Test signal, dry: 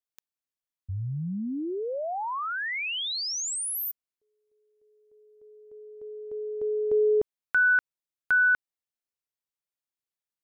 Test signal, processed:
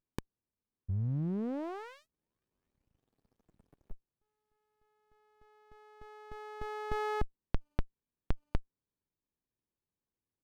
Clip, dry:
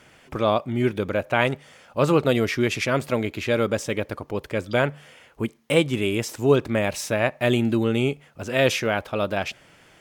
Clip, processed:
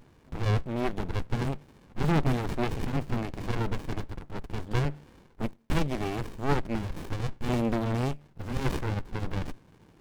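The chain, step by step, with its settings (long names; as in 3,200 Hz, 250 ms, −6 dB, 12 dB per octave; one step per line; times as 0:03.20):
windowed peak hold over 65 samples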